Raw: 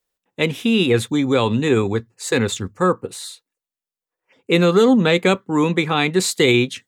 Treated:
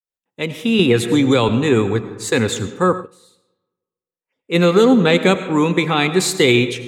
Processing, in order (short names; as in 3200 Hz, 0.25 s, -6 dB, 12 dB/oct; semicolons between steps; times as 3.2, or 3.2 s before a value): opening faded in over 0.83 s; reverb RT60 1.3 s, pre-delay 55 ms, DRR 11 dB; 0.79–1.49 three-band squash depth 100%; 3–4.56 dip -21 dB, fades 0.33 s exponential; gain +1.5 dB